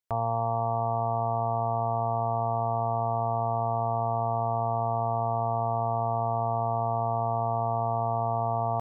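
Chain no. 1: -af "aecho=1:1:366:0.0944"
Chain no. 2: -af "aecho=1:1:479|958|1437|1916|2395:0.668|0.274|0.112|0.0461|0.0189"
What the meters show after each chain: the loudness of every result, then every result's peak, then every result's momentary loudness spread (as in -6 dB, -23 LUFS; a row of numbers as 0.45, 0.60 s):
-28.5, -28.0 LUFS; -18.5, -18.0 dBFS; 0, 0 LU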